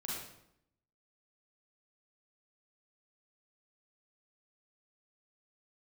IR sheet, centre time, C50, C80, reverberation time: 70 ms, -1.0 dB, 3.5 dB, 0.75 s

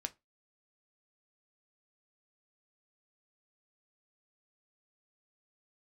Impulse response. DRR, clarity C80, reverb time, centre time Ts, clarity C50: 8.5 dB, 33.0 dB, 0.20 s, 3 ms, 23.5 dB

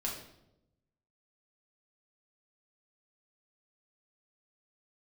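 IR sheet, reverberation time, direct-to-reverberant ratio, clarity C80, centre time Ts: 0.85 s, -3.0 dB, 8.0 dB, 36 ms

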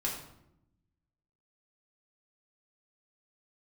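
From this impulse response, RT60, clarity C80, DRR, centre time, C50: 0.80 s, 7.5 dB, -4.0 dB, 36 ms, 4.5 dB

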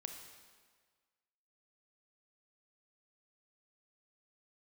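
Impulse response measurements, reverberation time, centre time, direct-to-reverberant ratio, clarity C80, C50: 1.6 s, 37 ms, 4.5 dB, 7.0 dB, 5.5 dB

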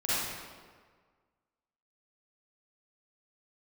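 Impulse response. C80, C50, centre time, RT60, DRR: -2.0 dB, -7.0 dB, 130 ms, 1.6 s, -11.5 dB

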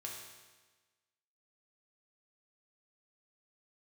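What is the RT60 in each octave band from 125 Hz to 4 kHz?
1.3 s, 1.3 s, 1.3 s, 1.3 s, 1.3 s, 1.3 s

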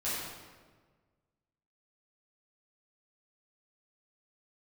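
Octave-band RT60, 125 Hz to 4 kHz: 1.9 s, 1.7 s, 1.6 s, 1.4 s, 1.2 s, 1.0 s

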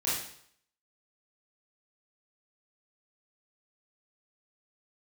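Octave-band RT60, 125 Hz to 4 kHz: 0.65 s, 0.60 s, 0.65 s, 0.65 s, 0.65 s, 0.60 s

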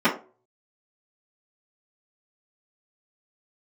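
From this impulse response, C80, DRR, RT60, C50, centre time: 16.0 dB, -12.5 dB, 0.40 s, 10.0 dB, 20 ms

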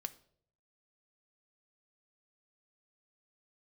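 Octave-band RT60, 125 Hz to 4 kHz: 0.95 s, 0.65 s, 0.75 s, 0.50 s, 0.45 s, 0.45 s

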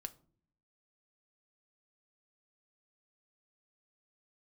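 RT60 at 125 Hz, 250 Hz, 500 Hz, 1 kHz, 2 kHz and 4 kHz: 0.90 s, 0.85 s, 0.60 s, 0.40 s, 0.30 s, 0.25 s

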